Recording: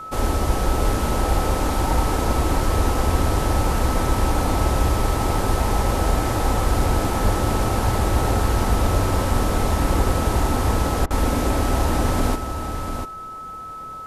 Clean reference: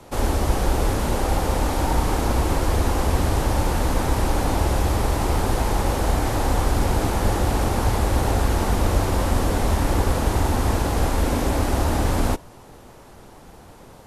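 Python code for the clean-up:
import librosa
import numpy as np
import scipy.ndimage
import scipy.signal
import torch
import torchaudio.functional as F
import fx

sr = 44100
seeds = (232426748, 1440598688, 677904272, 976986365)

y = fx.notch(x, sr, hz=1300.0, q=30.0)
y = fx.fix_interpolate(y, sr, at_s=(11.06,), length_ms=44.0)
y = fx.fix_echo_inverse(y, sr, delay_ms=693, level_db=-7.5)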